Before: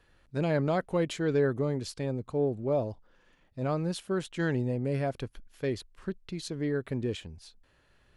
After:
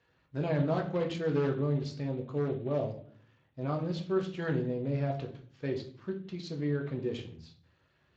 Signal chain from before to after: one-sided wavefolder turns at -22 dBFS; simulated room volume 53 m³, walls mixed, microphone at 0.6 m; trim -5.5 dB; Speex 21 kbps 16 kHz

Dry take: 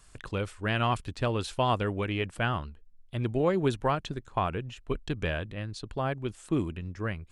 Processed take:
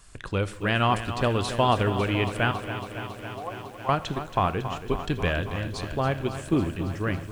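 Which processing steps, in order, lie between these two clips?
2.51–3.89 s: cascade formant filter a; on a send at -14 dB: reverberation RT60 0.65 s, pre-delay 4 ms; on the sum: bit-crushed delay 276 ms, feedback 80%, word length 9-bit, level -11 dB; trim +4.5 dB

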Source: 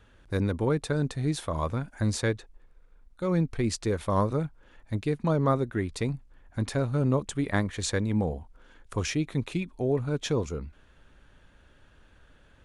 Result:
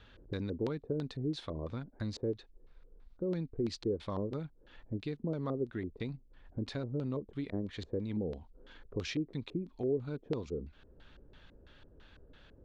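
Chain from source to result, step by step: dynamic bell 260 Hz, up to +4 dB, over -41 dBFS, Q 1.1; compression 2:1, threshold -44 dBFS, peak gain reduction 14.5 dB; LFO low-pass square 3 Hz 430–4100 Hz; trim -1 dB

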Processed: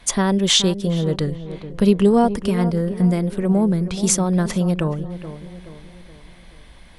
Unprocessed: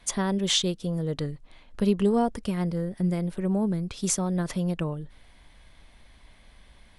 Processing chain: tape echo 425 ms, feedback 53%, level -10 dB, low-pass 1.1 kHz; trim +8 dB

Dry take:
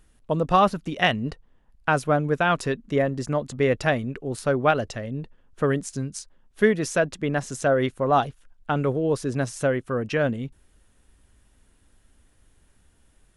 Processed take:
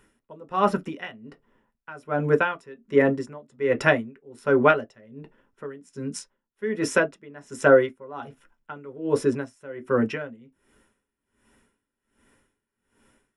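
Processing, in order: reverberation RT60 0.15 s, pre-delay 3 ms, DRR 6.5 dB; logarithmic tremolo 1.3 Hz, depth 25 dB

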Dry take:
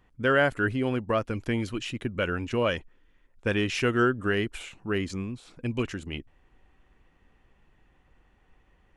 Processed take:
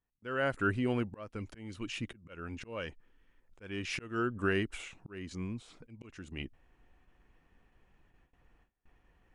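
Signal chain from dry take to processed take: slow attack 414 ms; speed mistake 25 fps video run at 24 fps; gate with hold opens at -53 dBFS; trim -4 dB

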